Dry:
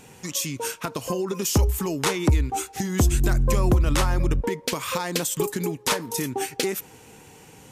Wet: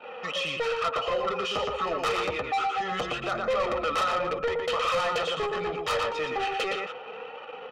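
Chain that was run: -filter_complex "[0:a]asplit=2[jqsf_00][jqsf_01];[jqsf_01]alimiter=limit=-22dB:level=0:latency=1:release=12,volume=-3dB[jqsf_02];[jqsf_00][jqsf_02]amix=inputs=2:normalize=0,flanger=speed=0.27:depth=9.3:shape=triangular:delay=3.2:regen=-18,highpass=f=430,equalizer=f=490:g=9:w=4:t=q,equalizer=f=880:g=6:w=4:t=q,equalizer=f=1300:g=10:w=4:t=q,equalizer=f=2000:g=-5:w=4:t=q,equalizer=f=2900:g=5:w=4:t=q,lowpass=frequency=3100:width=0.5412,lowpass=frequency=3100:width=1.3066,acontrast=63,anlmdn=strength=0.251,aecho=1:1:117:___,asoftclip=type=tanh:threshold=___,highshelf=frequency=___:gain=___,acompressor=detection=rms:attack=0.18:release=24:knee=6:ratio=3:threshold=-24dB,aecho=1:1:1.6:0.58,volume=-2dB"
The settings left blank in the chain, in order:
0.473, -19dB, 2100, 5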